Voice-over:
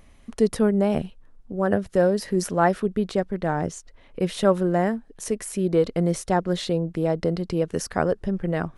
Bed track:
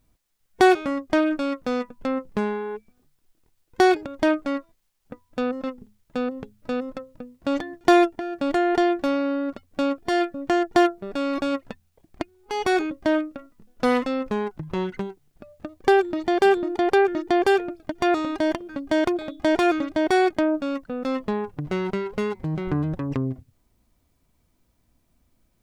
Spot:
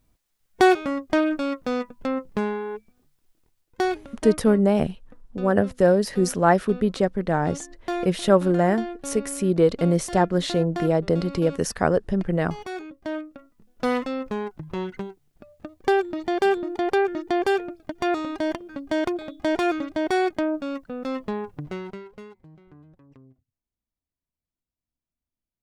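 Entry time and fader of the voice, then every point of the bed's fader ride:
3.85 s, +2.0 dB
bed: 3.39 s -0.5 dB
4.29 s -12.5 dB
12.76 s -12.5 dB
13.74 s -3 dB
21.57 s -3 dB
22.68 s -26 dB

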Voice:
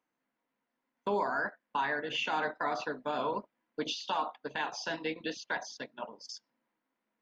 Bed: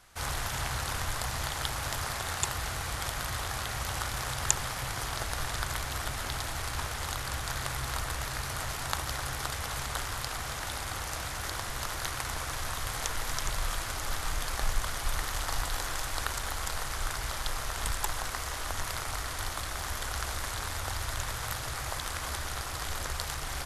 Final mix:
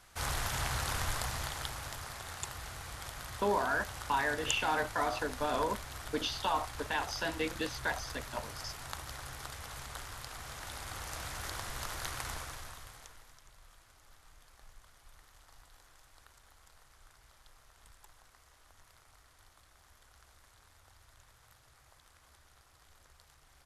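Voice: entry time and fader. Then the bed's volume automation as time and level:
2.35 s, +0.5 dB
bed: 1.11 s -1.5 dB
2.02 s -10 dB
10.29 s -10 dB
11.30 s -5 dB
12.31 s -5 dB
13.41 s -27.5 dB

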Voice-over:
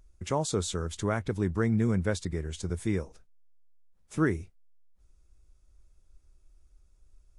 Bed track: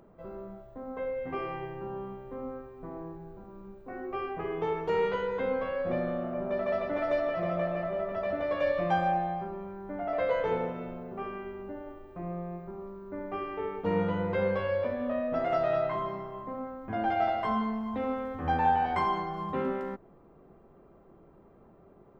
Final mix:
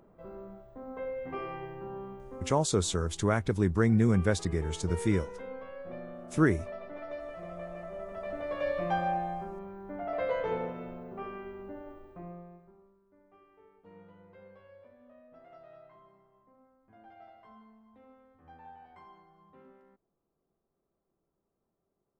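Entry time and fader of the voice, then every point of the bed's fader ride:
2.20 s, +2.0 dB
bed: 2.26 s -3 dB
2.96 s -12 dB
7.52 s -12 dB
8.78 s -3 dB
12.07 s -3 dB
13.11 s -26 dB

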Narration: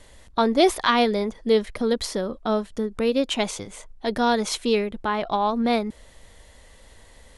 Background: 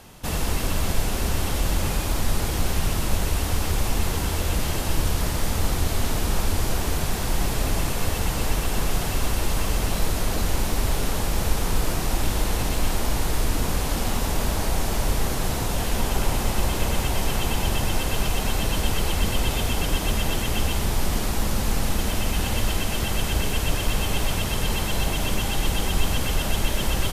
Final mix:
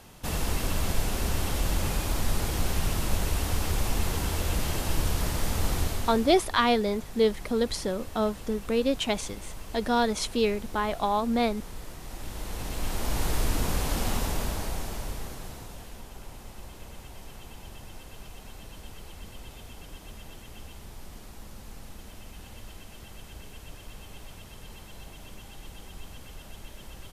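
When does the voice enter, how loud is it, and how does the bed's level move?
5.70 s, -3.5 dB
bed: 5.81 s -4 dB
6.51 s -18 dB
11.98 s -18 dB
13.24 s -3.5 dB
14.15 s -3.5 dB
16.07 s -21 dB

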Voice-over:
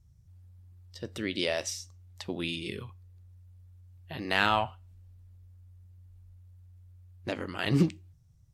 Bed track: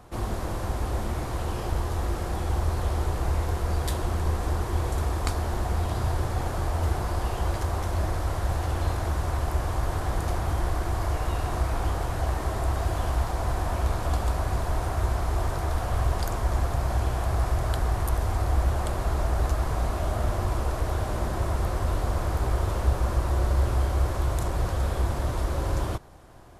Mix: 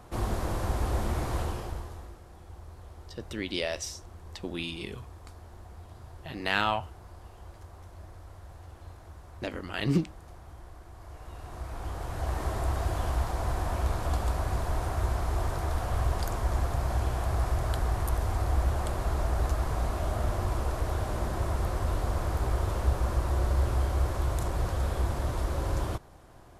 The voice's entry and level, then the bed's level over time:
2.15 s, -1.5 dB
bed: 1.39 s -0.5 dB
2.22 s -21 dB
10.93 s -21 dB
12.41 s -3 dB

